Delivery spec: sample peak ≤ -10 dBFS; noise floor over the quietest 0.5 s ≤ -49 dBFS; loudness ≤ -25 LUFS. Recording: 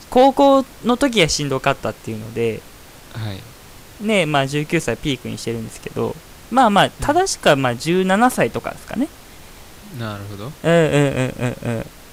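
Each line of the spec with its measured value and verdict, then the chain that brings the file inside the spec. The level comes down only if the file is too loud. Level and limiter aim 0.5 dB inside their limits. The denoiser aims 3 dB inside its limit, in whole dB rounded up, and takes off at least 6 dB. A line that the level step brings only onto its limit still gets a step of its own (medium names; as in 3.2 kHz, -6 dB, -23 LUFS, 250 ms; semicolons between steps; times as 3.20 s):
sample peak -3.0 dBFS: fail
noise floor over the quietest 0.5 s -41 dBFS: fail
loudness -18.5 LUFS: fail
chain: noise reduction 6 dB, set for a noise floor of -41 dBFS; trim -7 dB; peak limiter -10.5 dBFS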